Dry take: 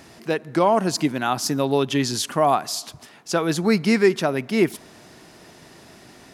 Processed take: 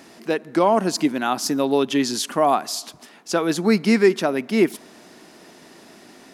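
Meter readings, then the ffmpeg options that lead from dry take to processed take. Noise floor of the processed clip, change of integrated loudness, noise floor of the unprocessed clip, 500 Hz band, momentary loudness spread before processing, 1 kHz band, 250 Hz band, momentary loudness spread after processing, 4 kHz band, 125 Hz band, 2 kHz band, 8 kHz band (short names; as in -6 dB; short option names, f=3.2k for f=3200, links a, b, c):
-48 dBFS, +1.0 dB, -48 dBFS, +1.0 dB, 10 LU, +0.5 dB, +1.5 dB, 9 LU, 0.0 dB, -4.0 dB, 0.0 dB, 0.0 dB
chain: -af "lowshelf=f=160:t=q:w=1.5:g=-10"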